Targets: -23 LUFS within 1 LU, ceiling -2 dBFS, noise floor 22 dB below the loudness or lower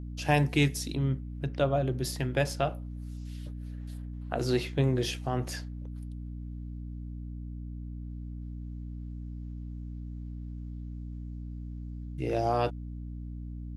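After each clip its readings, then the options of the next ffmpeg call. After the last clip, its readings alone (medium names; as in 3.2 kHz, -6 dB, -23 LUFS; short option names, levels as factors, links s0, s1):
hum 60 Hz; highest harmonic 300 Hz; hum level -36 dBFS; loudness -33.5 LUFS; peak level -11.5 dBFS; loudness target -23.0 LUFS
-> -af "bandreject=f=60:t=h:w=6,bandreject=f=120:t=h:w=6,bandreject=f=180:t=h:w=6,bandreject=f=240:t=h:w=6,bandreject=f=300:t=h:w=6"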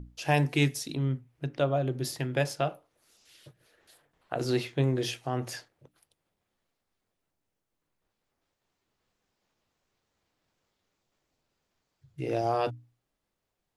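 hum not found; loudness -30.0 LUFS; peak level -12.0 dBFS; loudness target -23.0 LUFS
-> -af "volume=2.24"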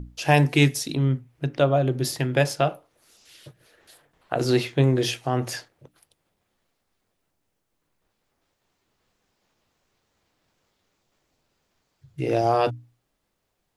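loudness -23.0 LUFS; peak level -5.0 dBFS; noise floor -76 dBFS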